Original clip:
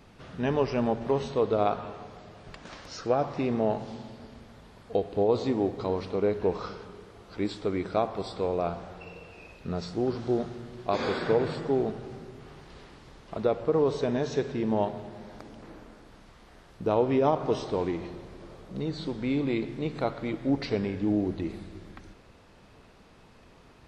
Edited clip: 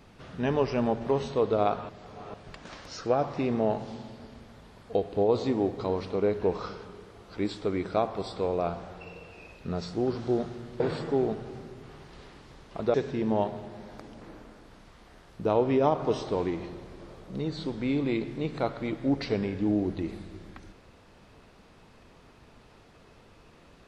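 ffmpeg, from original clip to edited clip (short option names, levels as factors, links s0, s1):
-filter_complex "[0:a]asplit=5[s0][s1][s2][s3][s4];[s0]atrim=end=1.892[s5];[s1]atrim=start=1.888:end=2.342,asetpts=PTS-STARTPTS,areverse[s6];[s2]atrim=start=2.338:end=10.802[s7];[s3]atrim=start=11.368:end=13.512[s8];[s4]atrim=start=14.348[s9];[s5][s6]acrossfade=d=0.004:c1=hsin:c2=hsin[s10];[s10][s7]acrossfade=d=0.004:c1=hsin:c2=hsin[s11];[s11][s8]acrossfade=d=0.004:c1=hsin:c2=hsin[s12];[s12][s9]acrossfade=d=0.004:c1=hsin:c2=hsin"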